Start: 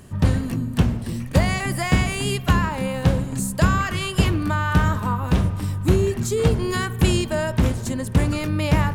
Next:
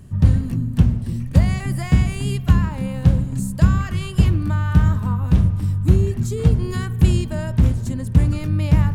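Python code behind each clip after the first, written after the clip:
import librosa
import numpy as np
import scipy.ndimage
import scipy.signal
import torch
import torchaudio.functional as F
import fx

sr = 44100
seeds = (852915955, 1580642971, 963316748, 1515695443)

y = fx.bass_treble(x, sr, bass_db=13, treble_db=1)
y = y * 10.0 ** (-7.5 / 20.0)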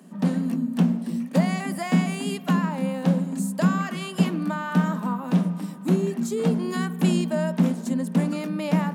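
y = scipy.signal.sosfilt(scipy.signal.cheby1(6, 6, 170.0, 'highpass', fs=sr, output='sos'), x)
y = y * 10.0 ** (5.0 / 20.0)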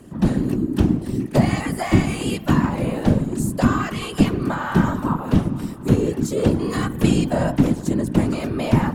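y = fx.whisperise(x, sr, seeds[0])
y = y * 10.0 ** (4.0 / 20.0)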